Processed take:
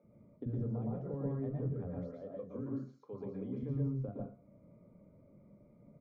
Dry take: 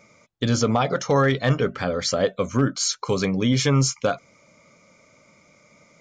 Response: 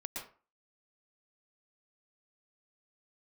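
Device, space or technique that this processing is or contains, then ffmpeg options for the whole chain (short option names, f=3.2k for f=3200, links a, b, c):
television next door: -filter_complex "[0:a]asettb=1/sr,asplit=3[a][b][c];[a]atrim=end=1.924[d];[b]atrim=start=1.92:end=3.59,asetpts=PTS-STARTPTS,afade=t=in:d=0.004:c=qsin,afade=t=out:st=1.666:d=0.004:c=qsin,aemphasis=mode=production:type=riaa[e];[c]atrim=start=3.586[f];[d][e]acrossfade=d=0.004:c1=hsin:c2=qsin[g];[g][f]acrossfade=d=0.004:c1=qsin:c2=hsin,acompressor=threshold=-34dB:ratio=4,lowpass=300[h];[1:a]atrim=start_sample=2205[i];[h][i]afir=irnorm=-1:irlink=0,acrossover=split=250[j][k];[j]adelay=40[l];[l][k]amix=inputs=2:normalize=0,volume=4dB"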